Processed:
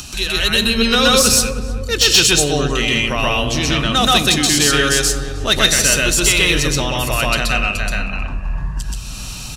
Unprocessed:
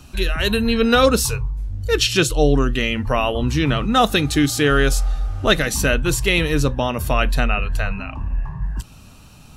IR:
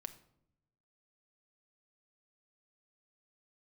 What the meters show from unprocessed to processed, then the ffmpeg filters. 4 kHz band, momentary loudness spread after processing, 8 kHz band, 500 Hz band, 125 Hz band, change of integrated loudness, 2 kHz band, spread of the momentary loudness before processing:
+9.0 dB, 15 LU, +11.5 dB, -0.5 dB, -0.5 dB, +5.0 dB, +5.0 dB, 11 LU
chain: -filter_complex "[0:a]equalizer=f=6k:w=0.39:g=14.5,acompressor=mode=upward:threshold=-19dB:ratio=2.5,asoftclip=type=tanh:threshold=-2dB,asplit=2[a][b];[b]adelay=313,lowpass=f=910:p=1,volume=-9dB,asplit=2[c][d];[d]adelay=313,lowpass=f=910:p=1,volume=0.52,asplit=2[e][f];[f]adelay=313,lowpass=f=910:p=1,volume=0.52,asplit=2[g][h];[h]adelay=313,lowpass=f=910:p=1,volume=0.52,asplit=2[i][j];[j]adelay=313,lowpass=f=910:p=1,volume=0.52,asplit=2[k][l];[l]adelay=313,lowpass=f=910:p=1,volume=0.52[m];[a][c][e][g][i][k][m]amix=inputs=7:normalize=0,asplit=2[n][o];[1:a]atrim=start_sample=2205,adelay=127[p];[o][p]afir=irnorm=-1:irlink=0,volume=5.5dB[q];[n][q]amix=inputs=2:normalize=0,volume=-4.5dB"

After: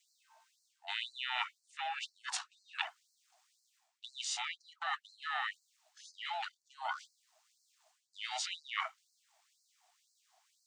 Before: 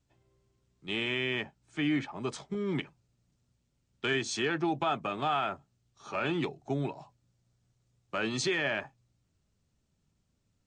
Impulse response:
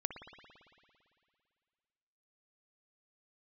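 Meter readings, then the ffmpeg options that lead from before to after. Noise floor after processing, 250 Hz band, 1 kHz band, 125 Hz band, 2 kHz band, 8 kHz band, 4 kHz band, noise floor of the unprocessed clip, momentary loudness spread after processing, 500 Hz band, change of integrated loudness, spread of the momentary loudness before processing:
-80 dBFS, under -40 dB, -5.0 dB, under -40 dB, -6.0 dB, -1.0 dB, -2.5 dB, -77 dBFS, 10 LU, -22.0 dB, -7.5 dB, 9 LU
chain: -af "acontrast=83,aeval=exprs='val(0)*sin(2*PI*510*n/s)':c=same,areverse,acompressor=threshold=-38dB:ratio=16,areverse,afftfilt=real='re*gte(b*sr/1024,640*pow(4100/640,0.5+0.5*sin(2*PI*2*pts/sr)))':imag='im*gte(b*sr/1024,640*pow(4100/640,0.5+0.5*sin(2*PI*2*pts/sr)))':win_size=1024:overlap=0.75,volume=7.5dB"

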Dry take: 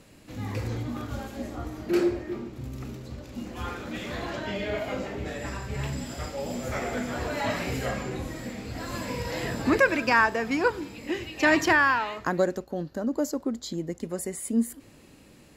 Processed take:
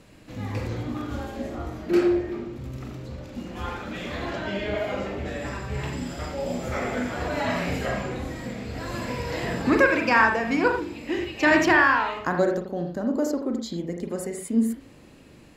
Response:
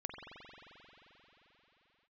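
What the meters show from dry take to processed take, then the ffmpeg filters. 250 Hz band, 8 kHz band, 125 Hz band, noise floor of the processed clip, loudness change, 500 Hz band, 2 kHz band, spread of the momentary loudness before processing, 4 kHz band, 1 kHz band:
+3.5 dB, -2.0 dB, +2.0 dB, -50 dBFS, +3.0 dB, +3.0 dB, +2.5 dB, 15 LU, +1.0 dB, +3.0 dB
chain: -filter_complex "[0:a]highshelf=f=7.4k:g=-7[a];[1:a]atrim=start_sample=2205,afade=t=out:st=0.18:d=0.01,atrim=end_sample=8379,asetrate=48510,aresample=44100[b];[a][b]afir=irnorm=-1:irlink=0,volume=6.5dB"

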